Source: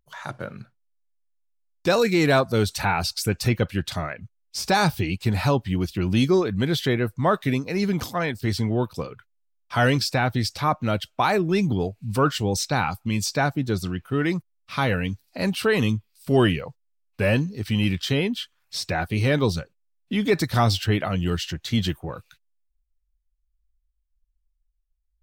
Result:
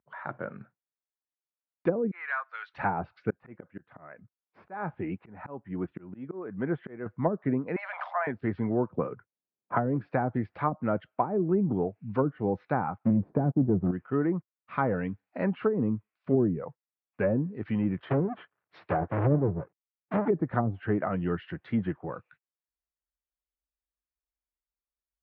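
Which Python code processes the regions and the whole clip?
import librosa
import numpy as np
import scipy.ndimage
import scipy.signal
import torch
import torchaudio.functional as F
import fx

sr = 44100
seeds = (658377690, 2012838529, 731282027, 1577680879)

y = fx.chain(x, sr, fx.block_float(bits=7),
    fx.highpass(hz=1300.0, slope=24), at=(2.11, 2.74))
y = fx.chain(y, sr, fx.lowpass(hz=1800.0, slope=12),
    fx.low_shelf(hz=130.0, db=-6.5),
    fx.auto_swell(attack_ms=431.0), at=(3.3, 7.06))
y = fx.chain(y, sr, fx.steep_highpass(hz=590.0, slope=96),
    fx.env_flatten(amount_pct=50), at=(7.76, 8.27))
y = fx.chain(y, sr, fx.env_lowpass(base_hz=370.0, full_db=-17.5),
    fx.band_squash(depth_pct=70), at=(8.9, 10.1))
y = fx.chain(y, sr, fx.halfwave_gain(db=-3.0),
    fx.leveller(passes=3), at=(12.97, 13.91))
y = fx.chain(y, sr, fx.halfwave_hold(),
    fx.peak_eq(hz=230.0, db=-12.5, octaves=0.35),
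    fx.band_widen(depth_pct=40), at=(17.98, 20.28))
y = scipy.signal.sosfilt(scipy.signal.butter(2, 170.0, 'highpass', fs=sr, output='sos'), y)
y = fx.env_lowpass_down(y, sr, base_hz=330.0, full_db=-16.5)
y = scipy.signal.sosfilt(scipy.signal.butter(4, 1900.0, 'lowpass', fs=sr, output='sos'), y)
y = y * 10.0 ** (-2.0 / 20.0)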